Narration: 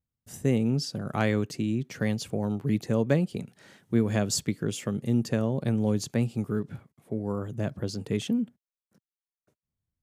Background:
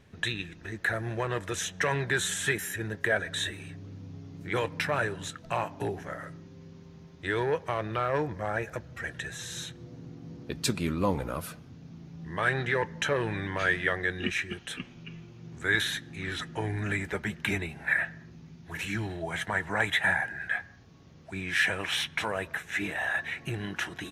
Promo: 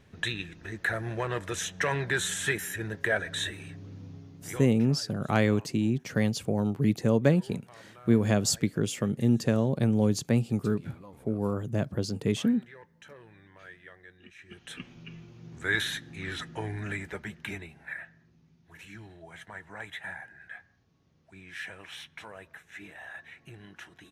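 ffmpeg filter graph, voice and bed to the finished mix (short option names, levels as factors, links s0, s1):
-filter_complex "[0:a]adelay=4150,volume=1.19[s0];[1:a]volume=10.6,afade=t=out:st=4.05:d=0.68:silence=0.0794328,afade=t=in:st=14.38:d=0.53:silence=0.0891251,afade=t=out:st=16.31:d=1.72:silence=0.237137[s1];[s0][s1]amix=inputs=2:normalize=0"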